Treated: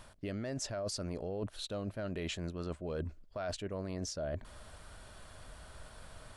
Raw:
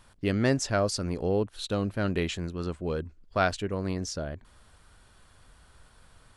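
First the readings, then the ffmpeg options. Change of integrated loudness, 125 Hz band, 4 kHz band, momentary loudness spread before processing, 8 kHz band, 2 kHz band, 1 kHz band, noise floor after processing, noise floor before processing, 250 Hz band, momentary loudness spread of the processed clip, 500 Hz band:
-10.0 dB, -10.0 dB, -7.0 dB, 8 LU, -6.5 dB, -13.5 dB, -13.5 dB, -58 dBFS, -59 dBFS, -10.5 dB, 15 LU, -9.5 dB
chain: -af "equalizer=f=620:t=o:w=0.3:g=9,alimiter=limit=0.0794:level=0:latency=1:release=14,areverse,acompressor=threshold=0.00891:ratio=6,areverse,volume=1.68"

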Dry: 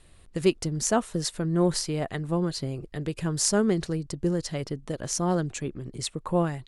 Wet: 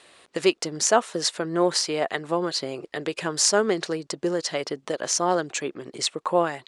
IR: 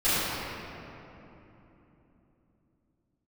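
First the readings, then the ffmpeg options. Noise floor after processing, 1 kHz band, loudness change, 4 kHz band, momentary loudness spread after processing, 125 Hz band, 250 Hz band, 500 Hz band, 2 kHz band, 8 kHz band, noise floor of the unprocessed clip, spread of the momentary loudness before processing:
-65 dBFS, +7.0 dB, +3.0 dB, +7.5 dB, 10 LU, -10.0 dB, -2.0 dB, +4.5 dB, +8.0 dB, +4.5 dB, -54 dBFS, 10 LU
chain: -filter_complex "[0:a]highpass=470,lowpass=6900,asplit=2[s0][s1];[s1]acompressor=threshold=0.0126:ratio=6,volume=0.75[s2];[s0][s2]amix=inputs=2:normalize=0,volume=2"

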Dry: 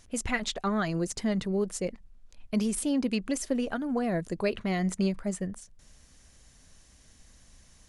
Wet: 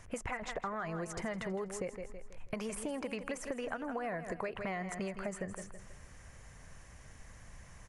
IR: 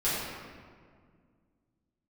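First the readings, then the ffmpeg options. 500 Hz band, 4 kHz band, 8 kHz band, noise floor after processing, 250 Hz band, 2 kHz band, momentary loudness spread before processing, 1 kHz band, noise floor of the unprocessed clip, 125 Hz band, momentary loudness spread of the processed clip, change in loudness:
-6.5 dB, -12.0 dB, -10.0 dB, -55 dBFS, -13.0 dB, -5.0 dB, 6 LU, -4.0 dB, -58 dBFS, -11.0 dB, 17 LU, -9.5 dB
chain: -filter_complex "[0:a]acrossover=split=510|1100[s0][s1][s2];[s0]acompressor=threshold=0.0112:ratio=4[s3];[s1]acompressor=threshold=0.0126:ratio=4[s4];[s2]acompressor=threshold=0.0112:ratio=4[s5];[s3][s4][s5]amix=inputs=3:normalize=0,equalizer=f=125:t=o:w=1:g=7,equalizer=f=250:t=o:w=1:g=-5,equalizer=f=500:t=o:w=1:g=3,equalizer=f=1000:t=o:w=1:g=5,equalizer=f=2000:t=o:w=1:g=6,equalizer=f=4000:t=o:w=1:g=-10,aecho=1:1:162|324|486|648:0.251|0.1|0.0402|0.0161,asplit=2[s6][s7];[s7]alimiter=level_in=1.33:limit=0.0631:level=0:latency=1,volume=0.75,volume=0.75[s8];[s6][s8]amix=inputs=2:normalize=0,highshelf=f=9100:g=-8.5,acompressor=threshold=0.0224:ratio=6,volume=0.794"

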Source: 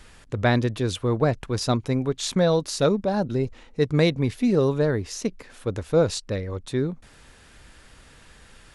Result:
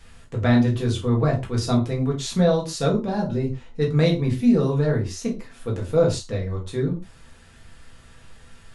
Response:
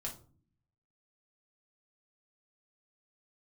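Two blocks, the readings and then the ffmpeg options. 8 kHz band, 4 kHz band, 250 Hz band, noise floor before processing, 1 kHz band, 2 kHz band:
-1.5 dB, -1.5 dB, +3.0 dB, -52 dBFS, -1.0 dB, -2.0 dB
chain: -filter_complex "[1:a]atrim=start_sample=2205,atrim=end_sample=6174[s0];[0:a][s0]afir=irnorm=-1:irlink=0"

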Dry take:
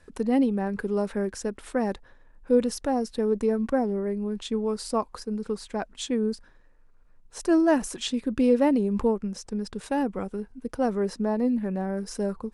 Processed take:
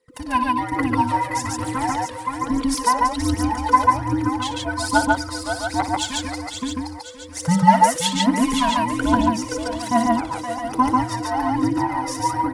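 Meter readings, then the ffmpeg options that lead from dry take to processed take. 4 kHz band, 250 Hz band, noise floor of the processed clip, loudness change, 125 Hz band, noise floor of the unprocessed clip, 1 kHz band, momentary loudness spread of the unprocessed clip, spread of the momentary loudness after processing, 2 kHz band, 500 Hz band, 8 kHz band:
+11.5 dB, +3.5 dB, -35 dBFS, +6.0 dB, no reading, -56 dBFS, +16.5 dB, 11 LU, 10 LU, +13.0 dB, -2.5 dB, +12.0 dB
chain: -filter_complex "[0:a]afftfilt=real='real(if(between(b,1,1008),(2*floor((b-1)/24)+1)*24-b,b),0)':imag='imag(if(between(b,1,1008),(2*floor((b-1)/24)+1)*24-b,b),0)*if(between(b,1,1008),-1,1)':win_size=2048:overlap=0.75,asplit=2[s0][s1];[s1]aecho=0:1:522|1044|1566|2088|2610:0.501|0.205|0.0842|0.0345|0.0142[s2];[s0][s2]amix=inputs=2:normalize=0,agate=range=0.141:threshold=0.00447:ratio=16:detection=peak,highpass=f=550:p=1,aphaser=in_gain=1:out_gain=1:delay=2.1:decay=0.68:speed=1.2:type=triangular,asplit=2[s3][s4];[s4]aecho=0:1:58.31|142.9:0.251|0.891[s5];[s3][s5]amix=inputs=2:normalize=0,volume=1.88"

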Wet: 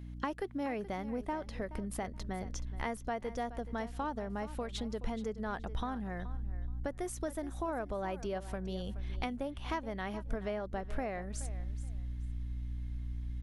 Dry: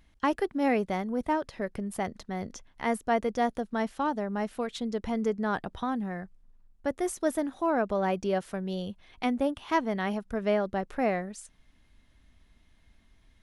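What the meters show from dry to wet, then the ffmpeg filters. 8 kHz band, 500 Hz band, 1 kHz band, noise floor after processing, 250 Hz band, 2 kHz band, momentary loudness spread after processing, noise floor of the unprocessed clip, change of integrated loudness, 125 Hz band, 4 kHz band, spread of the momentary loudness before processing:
-4.0 dB, -9.0 dB, -9.0 dB, -46 dBFS, -9.0 dB, -8.0 dB, 4 LU, -63 dBFS, -8.5 dB, +0.5 dB, -5.5 dB, 8 LU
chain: -filter_complex "[0:a]aeval=exprs='val(0)+0.00631*(sin(2*PI*60*n/s)+sin(2*PI*2*60*n/s)/2+sin(2*PI*3*60*n/s)/3+sin(2*PI*4*60*n/s)/4+sin(2*PI*5*60*n/s)/5)':c=same,acompressor=threshold=0.0158:ratio=4,asubboost=boost=4:cutoff=76,asplit=2[s0][s1];[s1]aecho=0:1:425|850:0.178|0.0373[s2];[s0][s2]amix=inputs=2:normalize=0,volume=1.12"

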